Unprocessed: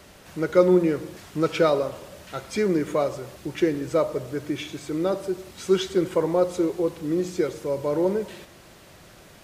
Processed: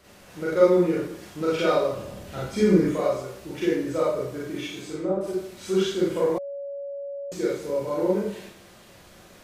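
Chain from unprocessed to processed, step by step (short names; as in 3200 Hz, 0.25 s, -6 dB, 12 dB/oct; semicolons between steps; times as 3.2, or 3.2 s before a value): 1.92–2.85 low shelf 290 Hz +11.5 dB; 4.8–5.21 treble ducked by the level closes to 870 Hz, closed at -19.5 dBFS; Schroeder reverb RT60 0.53 s, combs from 31 ms, DRR -7 dB; 6.38–7.32 bleep 562 Hz -22.5 dBFS; gain -8.5 dB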